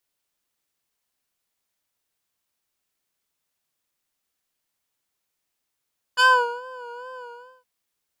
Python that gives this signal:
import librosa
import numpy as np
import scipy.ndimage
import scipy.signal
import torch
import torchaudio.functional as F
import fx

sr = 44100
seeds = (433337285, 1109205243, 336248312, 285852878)

y = fx.sub_patch_vibrato(sr, seeds[0], note=83, wave='square', wave2='square', interval_st=7, detune_cents=16, level2_db=-1.5, sub_db=-6.5, noise_db=-23.0, kind='bandpass', cutoff_hz=210.0, q=0.94, env_oct=4.0, env_decay_s=0.3, env_sustain_pct=10, attack_ms=30.0, decay_s=0.41, sustain_db=-16.0, release_s=0.45, note_s=1.02, lfo_hz=2.4, vibrato_cents=69)